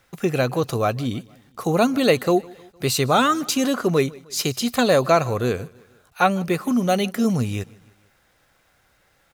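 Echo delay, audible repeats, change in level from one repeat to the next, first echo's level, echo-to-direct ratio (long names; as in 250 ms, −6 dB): 154 ms, 2, −5.5 dB, −24.0 dB, −22.5 dB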